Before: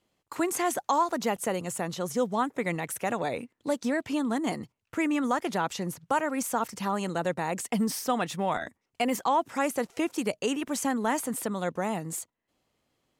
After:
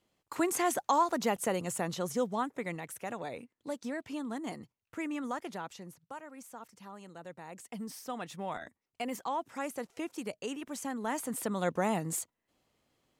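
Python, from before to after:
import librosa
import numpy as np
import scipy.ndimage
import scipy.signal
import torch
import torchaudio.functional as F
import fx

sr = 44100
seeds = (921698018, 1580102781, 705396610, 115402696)

y = fx.gain(x, sr, db=fx.line((1.94, -2.0), (2.91, -9.5), (5.38, -9.5), (6.21, -19.0), (7.09, -19.0), (8.46, -9.5), (10.88, -9.5), (11.71, 0.0)))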